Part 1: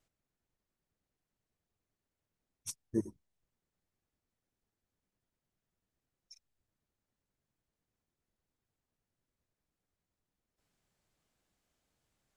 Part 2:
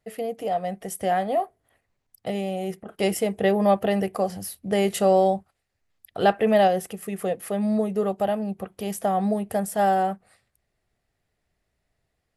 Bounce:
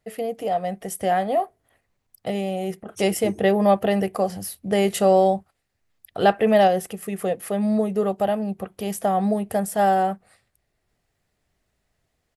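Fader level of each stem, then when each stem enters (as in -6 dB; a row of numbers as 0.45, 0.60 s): +1.5, +2.0 dB; 0.30, 0.00 s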